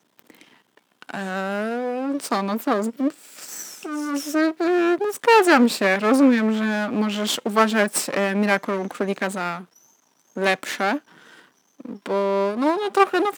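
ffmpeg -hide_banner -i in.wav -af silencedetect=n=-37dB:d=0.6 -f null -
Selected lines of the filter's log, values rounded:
silence_start: 9.63
silence_end: 10.37 | silence_duration: 0.73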